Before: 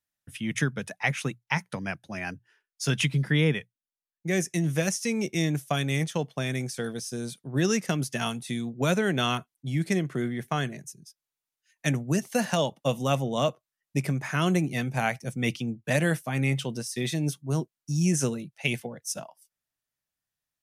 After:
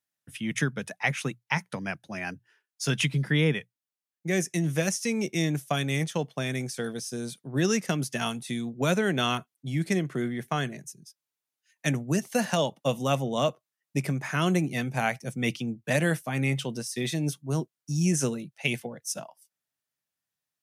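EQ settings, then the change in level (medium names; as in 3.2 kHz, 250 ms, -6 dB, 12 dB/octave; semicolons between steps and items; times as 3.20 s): high-pass 110 Hz; 0.0 dB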